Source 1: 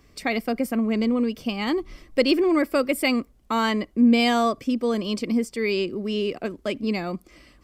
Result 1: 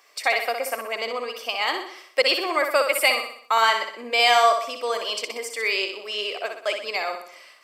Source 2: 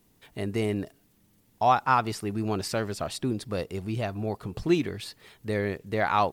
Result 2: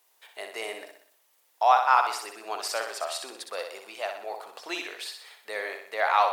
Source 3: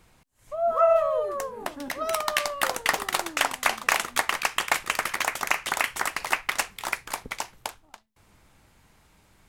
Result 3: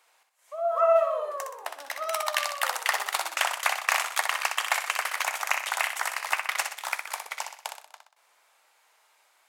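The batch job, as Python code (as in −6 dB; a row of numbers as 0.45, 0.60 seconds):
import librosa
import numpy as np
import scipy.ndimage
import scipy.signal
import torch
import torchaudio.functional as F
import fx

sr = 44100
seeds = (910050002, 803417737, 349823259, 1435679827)

p1 = scipy.signal.sosfilt(scipy.signal.butter(4, 600.0, 'highpass', fs=sr, output='sos'), x)
p2 = p1 + fx.echo_feedback(p1, sr, ms=62, feedback_pct=49, wet_db=-6.5, dry=0)
y = librosa.util.normalize(p2) * 10.0 ** (-6 / 20.0)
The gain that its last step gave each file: +5.5, +2.0, −2.0 decibels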